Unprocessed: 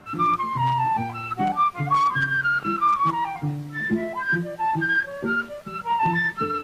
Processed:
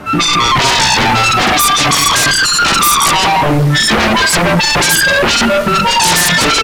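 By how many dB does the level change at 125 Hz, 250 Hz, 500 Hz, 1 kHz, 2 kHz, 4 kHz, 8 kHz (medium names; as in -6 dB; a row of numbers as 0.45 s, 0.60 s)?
+13.0 dB, +12.5 dB, +17.5 dB, +9.5 dB, +13.0 dB, +31.0 dB, no reading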